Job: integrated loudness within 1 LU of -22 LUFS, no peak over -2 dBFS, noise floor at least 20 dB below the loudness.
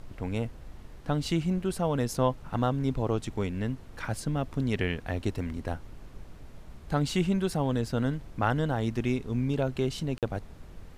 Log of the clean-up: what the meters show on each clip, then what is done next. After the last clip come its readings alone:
dropouts 1; longest dropout 47 ms; noise floor -48 dBFS; noise floor target -51 dBFS; loudness -30.5 LUFS; peak level -13.0 dBFS; loudness target -22.0 LUFS
-> interpolate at 10.18 s, 47 ms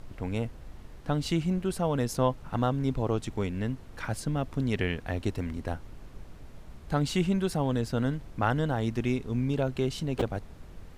dropouts 0; noise floor -48 dBFS; noise floor target -51 dBFS
-> noise print and reduce 6 dB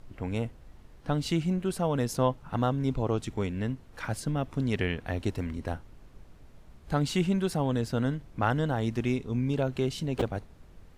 noise floor -53 dBFS; loudness -30.5 LUFS; peak level -12.5 dBFS; loudness target -22.0 LUFS
-> trim +8.5 dB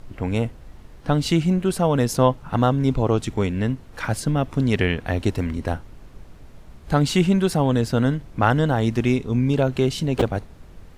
loudness -22.0 LUFS; peak level -4.0 dBFS; noise floor -45 dBFS

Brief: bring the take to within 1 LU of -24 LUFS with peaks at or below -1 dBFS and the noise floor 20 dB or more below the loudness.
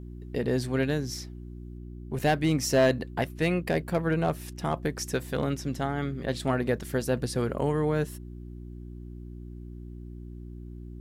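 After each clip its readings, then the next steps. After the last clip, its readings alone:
clipped samples 0.3%; clipping level -15.5 dBFS; hum 60 Hz; highest harmonic 360 Hz; hum level -38 dBFS; loudness -28.5 LUFS; peak level -15.5 dBFS; loudness target -24.0 LUFS
-> clip repair -15.5 dBFS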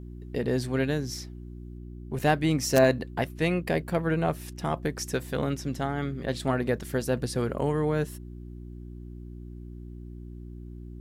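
clipped samples 0.0%; hum 60 Hz; highest harmonic 360 Hz; hum level -38 dBFS
-> de-hum 60 Hz, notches 6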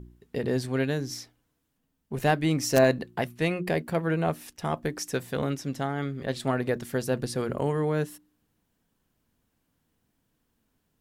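hum not found; loudness -28.5 LUFS; peak level -7.0 dBFS; loudness target -24.0 LUFS
-> trim +4.5 dB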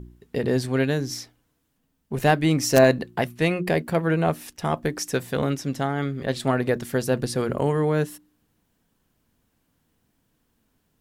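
loudness -24.0 LUFS; peak level -2.5 dBFS; noise floor -72 dBFS

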